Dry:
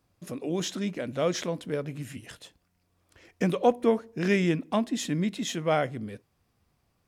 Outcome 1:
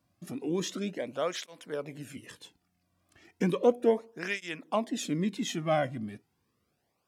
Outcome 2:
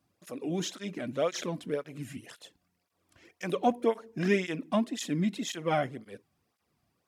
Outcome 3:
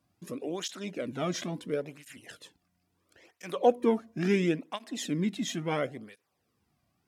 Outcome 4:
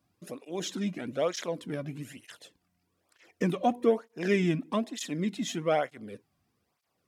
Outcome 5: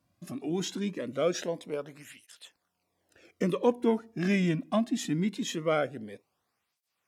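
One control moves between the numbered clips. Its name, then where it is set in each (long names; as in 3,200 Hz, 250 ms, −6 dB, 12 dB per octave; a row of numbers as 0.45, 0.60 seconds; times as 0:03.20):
through-zero flanger with one copy inverted, nulls at: 0.34, 1.9, 0.73, 1.1, 0.22 Hertz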